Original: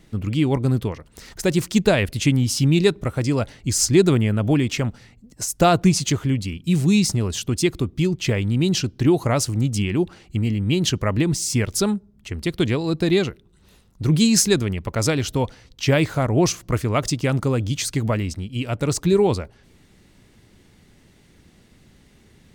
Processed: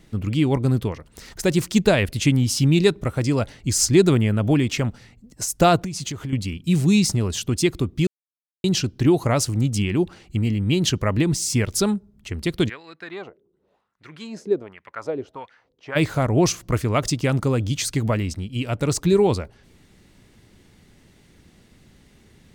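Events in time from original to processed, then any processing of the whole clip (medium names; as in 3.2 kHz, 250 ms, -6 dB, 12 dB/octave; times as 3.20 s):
5.76–6.33 s: compression 12:1, threshold -25 dBFS
8.07–8.64 s: mute
12.68–15.95 s: wah-wah 0.64 Hz -> 2.1 Hz 410–1900 Hz, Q 2.6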